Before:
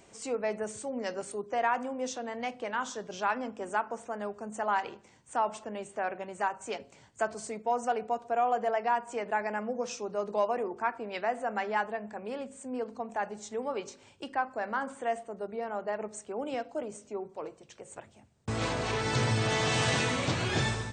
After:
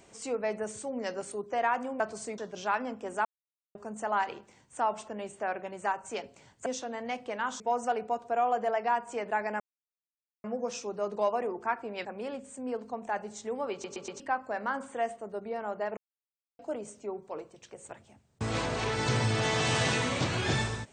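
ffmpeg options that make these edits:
-filter_complex "[0:a]asplit=15[a][b][c][d][e][f][g][h][i][j][k][l][m][n][o];[a]atrim=end=2.002[p];[b]atrim=start=7.218:end=7.602[q];[c]atrim=start=2.938:end=3.81,asetpts=PTS-STARTPTS,afade=t=out:st=0.868:d=0.004:c=hsin[r];[d]atrim=start=3.81:end=4.31,asetpts=PTS-STARTPTS,volume=0[s];[e]atrim=start=4.31:end=7.222,asetpts=PTS-STARTPTS,afade=t=in:d=0.004:c=hsin[t];[f]atrim=start=1.998:end=2.942[u];[g]atrim=start=7.598:end=9.6,asetpts=PTS-STARTPTS,afade=t=out:st=1.998:d=0.004:c=hsin,apad=pad_dur=0.84[v];[h]atrim=start=9.6:end=11.212,asetpts=PTS-STARTPTS,afade=t=in:d=0.004:c=hsin[w];[i]atrim=start=12.118:end=13.912[x];[j]atrim=start=13.788:end=13.912[y];[k]atrim=start=13.788:end=13.912[z];[l]atrim=start=13.788:end=13.912[aa];[m]atrim=start=14.268:end=16.04,asetpts=PTS-STARTPTS,afade=t=out:st=1.768:d=0.004:c=hsin[ab];[n]atrim=start=16.04:end=16.66,asetpts=PTS-STARTPTS,volume=0[ac];[o]atrim=start=16.66,asetpts=PTS-STARTPTS,afade=t=in:d=0.004:c=hsin[ad];[p][q]acrossfade=d=0.004:c1=hsin:c2=hsin[ae];[r][s][t]concat=n=3:v=0:a=1[af];[ae][af]acrossfade=d=0.004:c1=hsin:c2=hsin[ag];[ag][u]acrossfade=d=0.004:c1=hsin:c2=hsin[ah];[v][w]concat=n=2:v=0:a=1[ai];[ah][ai]acrossfade=d=0.004:c1=hsin:c2=hsin[aj];[aj][x]acrossfade=d=0.004:c1=hsin:c2=hsin[ak];[ak][y]acrossfade=d=0.004:c1=hsin:c2=hsin[al];[al][z]acrossfade=d=0.004:c1=hsin:c2=hsin[am];[am][aa]acrossfade=d=0.004:c1=hsin:c2=hsin[an];[ab][ac][ad]concat=n=3:v=0:a=1[ao];[an][ao]acrossfade=d=0.004:c1=hsin:c2=hsin"

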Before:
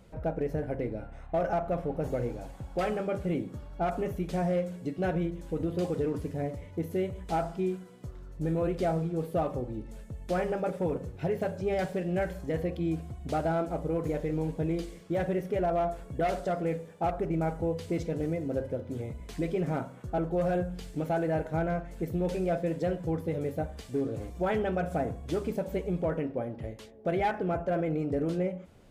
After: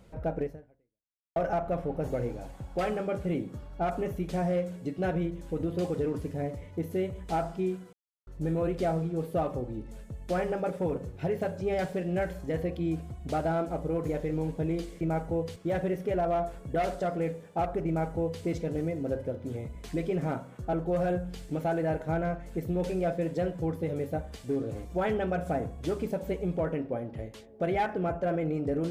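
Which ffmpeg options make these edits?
-filter_complex "[0:a]asplit=6[a][b][c][d][e][f];[a]atrim=end=1.36,asetpts=PTS-STARTPTS,afade=t=out:st=0.43:d=0.93:c=exp[g];[b]atrim=start=1.36:end=7.93,asetpts=PTS-STARTPTS,afade=t=in:d=0.004:c=hsin,afade=t=out:st=6.566:d=0.004:c=hsin[h];[c]atrim=start=7.93:end=8.27,asetpts=PTS-STARTPTS,volume=0[i];[d]atrim=start=8.27:end=15.012,asetpts=PTS-STARTPTS,afade=t=in:d=0.004:c=hsin[j];[e]atrim=start=17.318:end=17.872[k];[f]atrim=start=15.008[l];[g][h][i][j]concat=n=4:v=0:a=1[m];[m][k]acrossfade=d=0.004:c1=hsin:c2=hsin[n];[n][l]acrossfade=d=0.004:c1=hsin:c2=hsin"

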